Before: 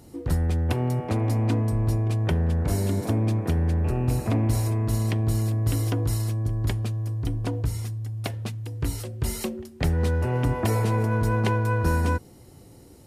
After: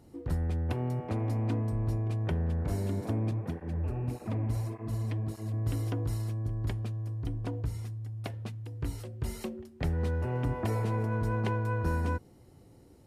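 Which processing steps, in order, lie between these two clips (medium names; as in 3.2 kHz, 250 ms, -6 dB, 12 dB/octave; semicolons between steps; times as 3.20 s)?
treble shelf 3.7 kHz -8 dB; 3.31–5.54 s: cancelling through-zero flanger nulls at 1.7 Hz, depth 6.3 ms; trim -7 dB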